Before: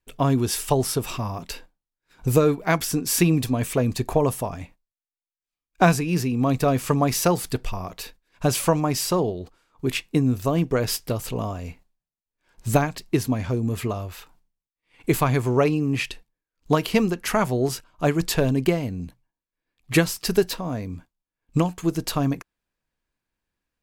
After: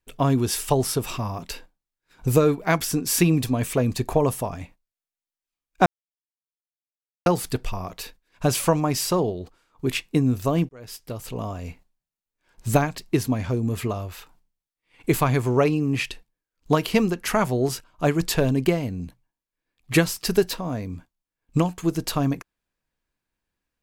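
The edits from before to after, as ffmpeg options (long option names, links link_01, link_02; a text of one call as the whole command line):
ffmpeg -i in.wav -filter_complex "[0:a]asplit=4[link_01][link_02][link_03][link_04];[link_01]atrim=end=5.86,asetpts=PTS-STARTPTS,afade=type=out:start_time=5.856:duration=0.004:curve=hsin[link_05];[link_02]atrim=start=5.86:end=7.26,asetpts=PTS-STARTPTS,volume=0[link_06];[link_03]atrim=start=7.26:end=10.69,asetpts=PTS-STARTPTS,afade=type=in:duration=0.004:curve=hsin,afade=type=out:start_time=3.426:duration=0.004:curve=hsin[link_07];[link_04]atrim=start=10.69,asetpts=PTS-STARTPTS,afade=type=in:duration=0.99[link_08];[link_05][link_06][link_07][link_08]concat=n=4:v=0:a=1" out.wav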